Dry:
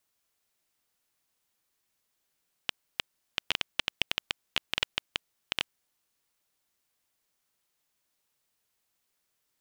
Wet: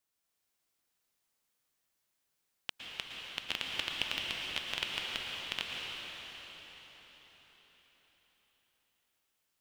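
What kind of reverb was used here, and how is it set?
plate-style reverb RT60 5 s, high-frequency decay 0.9×, pre-delay 100 ms, DRR -2 dB; trim -6.5 dB

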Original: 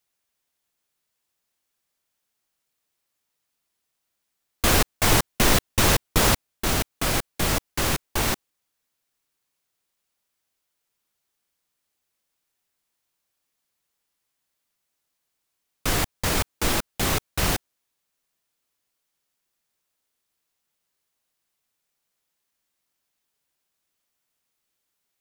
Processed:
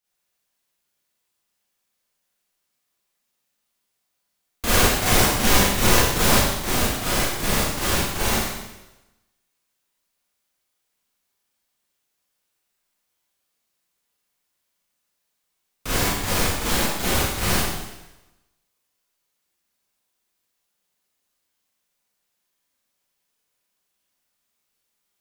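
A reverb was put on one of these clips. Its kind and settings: Schroeder reverb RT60 1 s, combs from 31 ms, DRR -10 dB; trim -7.5 dB

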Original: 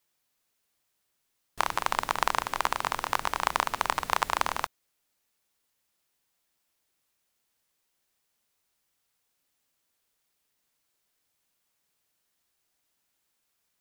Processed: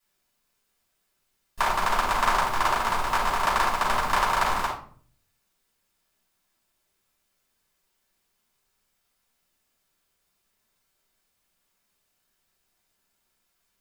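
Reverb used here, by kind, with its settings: simulated room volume 490 m³, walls furnished, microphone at 9.3 m; trim -7.5 dB

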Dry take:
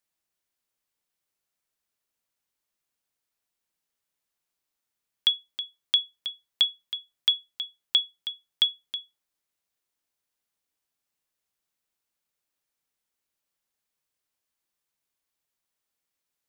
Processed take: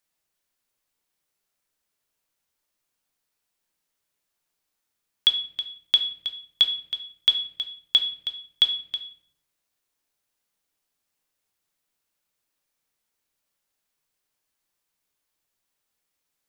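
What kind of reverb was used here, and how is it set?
simulated room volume 97 m³, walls mixed, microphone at 0.4 m; trim +3.5 dB

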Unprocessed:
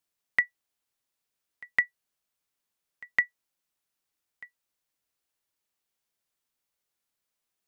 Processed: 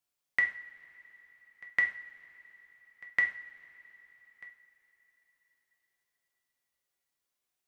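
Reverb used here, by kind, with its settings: two-slope reverb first 0.44 s, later 4.4 s, from -22 dB, DRR 1 dB; trim -4 dB

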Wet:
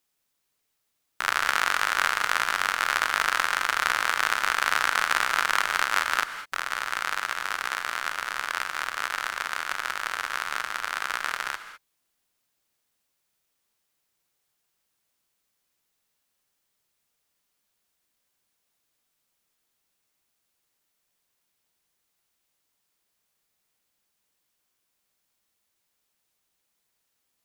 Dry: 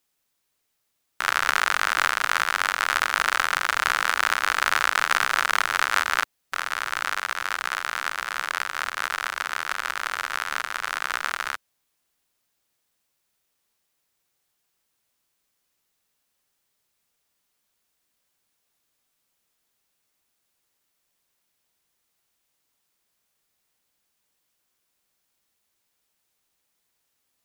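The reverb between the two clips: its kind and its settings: gated-style reverb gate 230 ms rising, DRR 11 dB; trim -2 dB

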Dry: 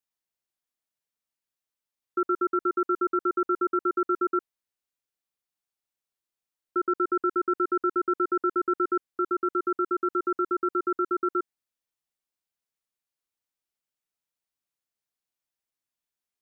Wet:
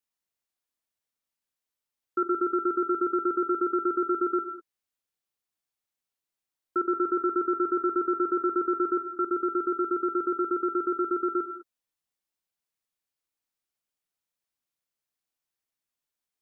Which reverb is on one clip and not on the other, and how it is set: gated-style reverb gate 230 ms flat, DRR 9 dB

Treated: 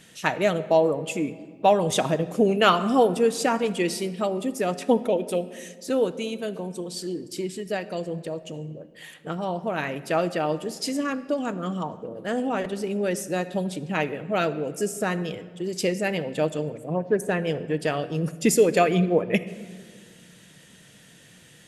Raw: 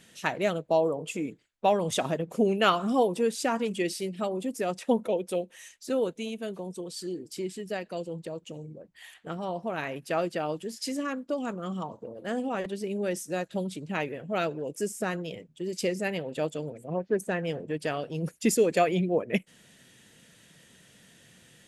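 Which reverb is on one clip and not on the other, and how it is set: simulated room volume 2700 m³, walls mixed, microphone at 0.49 m; trim +4.5 dB

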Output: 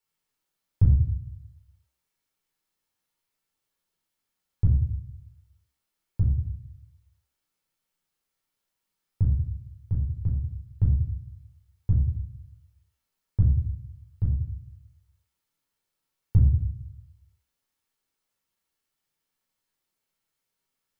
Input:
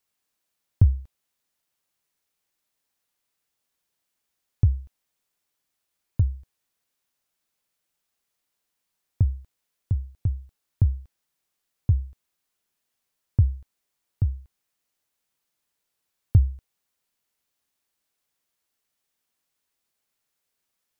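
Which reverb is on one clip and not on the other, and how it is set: simulated room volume 660 m³, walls furnished, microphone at 4.3 m; trim -8 dB

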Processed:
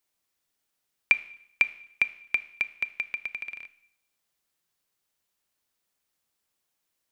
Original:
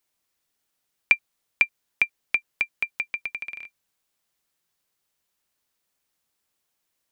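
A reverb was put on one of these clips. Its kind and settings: Schroeder reverb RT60 0.71 s, combs from 25 ms, DRR 15 dB; trim -2.5 dB

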